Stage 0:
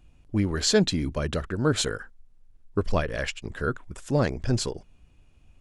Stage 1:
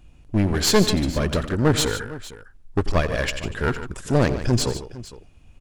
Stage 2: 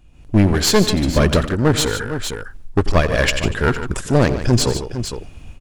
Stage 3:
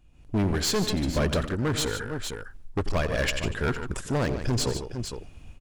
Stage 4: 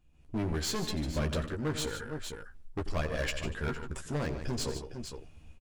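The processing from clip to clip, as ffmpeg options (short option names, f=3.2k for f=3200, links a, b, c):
-af "aeval=exprs='clip(val(0),-1,0.0422)':c=same,aecho=1:1:90|149|458:0.158|0.251|0.141,volume=6dB"
-af "dynaudnorm=f=120:g=3:m=15dB,volume=-1dB"
-af "asoftclip=type=hard:threshold=-10.5dB,volume=-8.5dB"
-filter_complex "[0:a]asplit=2[a][b];[b]adelay=13,volume=-5dB[c];[a][c]amix=inputs=2:normalize=0,volume=-8.5dB"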